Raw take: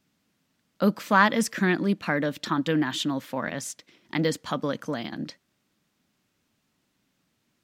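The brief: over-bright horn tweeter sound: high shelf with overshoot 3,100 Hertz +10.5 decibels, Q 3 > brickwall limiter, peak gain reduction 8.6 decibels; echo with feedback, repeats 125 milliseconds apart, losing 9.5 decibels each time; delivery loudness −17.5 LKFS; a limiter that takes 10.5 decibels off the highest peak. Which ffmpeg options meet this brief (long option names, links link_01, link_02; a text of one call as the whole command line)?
ffmpeg -i in.wav -af "alimiter=limit=-15.5dB:level=0:latency=1,highshelf=frequency=3100:width_type=q:width=3:gain=10.5,aecho=1:1:125|250|375|500:0.335|0.111|0.0365|0.012,volume=8dB,alimiter=limit=-5.5dB:level=0:latency=1" out.wav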